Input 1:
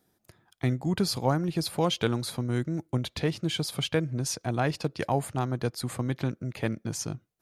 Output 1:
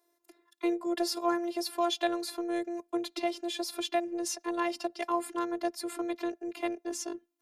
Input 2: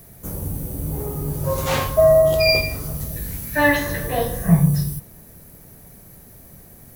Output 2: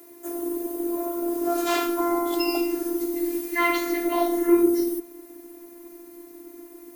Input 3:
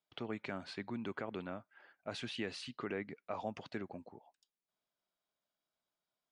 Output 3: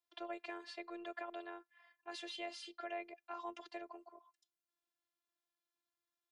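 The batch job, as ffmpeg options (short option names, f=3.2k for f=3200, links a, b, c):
-af "asubboost=boost=7:cutoff=53,afreqshift=220,afftfilt=real='hypot(re,im)*cos(PI*b)':imag='0':win_size=512:overlap=0.75"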